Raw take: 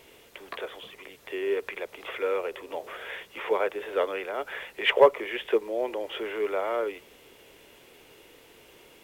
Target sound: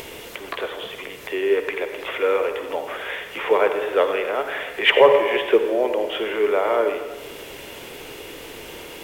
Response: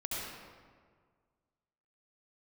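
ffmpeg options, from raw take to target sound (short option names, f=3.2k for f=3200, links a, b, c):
-filter_complex "[0:a]acompressor=mode=upward:threshold=-36dB:ratio=2.5,asplit=2[a][b];[1:a]atrim=start_sample=2205,asetrate=61740,aresample=44100[c];[b][c]afir=irnorm=-1:irlink=0,volume=-4.5dB[d];[a][d]amix=inputs=2:normalize=0,alimiter=level_in=6.5dB:limit=-1dB:release=50:level=0:latency=1,volume=-1dB"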